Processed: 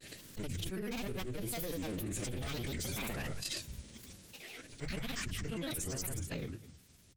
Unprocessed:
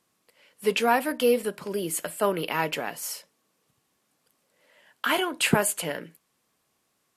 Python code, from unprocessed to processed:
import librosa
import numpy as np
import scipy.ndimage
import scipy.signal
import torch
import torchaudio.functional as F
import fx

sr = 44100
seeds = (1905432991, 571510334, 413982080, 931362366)

p1 = fx.block_reorder(x, sr, ms=132.0, group=3)
p2 = fx.doppler_pass(p1, sr, speed_mps=15, closest_m=2.9, pass_at_s=1.85)
p3 = fx.low_shelf(p2, sr, hz=92.0, db=-2.5)
p4 = fx.rider(p3, sr, range_db=4, speed_s=0.5)
p5 = p3 + F.gain(torch.from_numpy(p4), -1.5).numpy()
p6 = fx.tube_stage(p5, sr, drive_db=33.0, bias=0.5)
p7 = p6 + fx.echo_feedback(p6, sr, ms=64, feedback_pct=40, wet_db=-12.0, dry=0)
p8 = fx.pitch_keep_formants(p7, sr, semitones=-7.0)
p9 = fx.granulator(p8, sr, seeds[0], grain_ms=100.0, per_s=20.0, spray_ms=100.0, spread_st=7)
p10 = fx.tone_stack(p9, sr, knobs='10-0-1')
p11 = fx.hum_notches(p10, sr, base_hz=50, count=3)
p12 = fx.env_flatten(p11, sr, amount_pct=100)
y = F.gain(torch.from_numpy(p12), 16.5).numpy()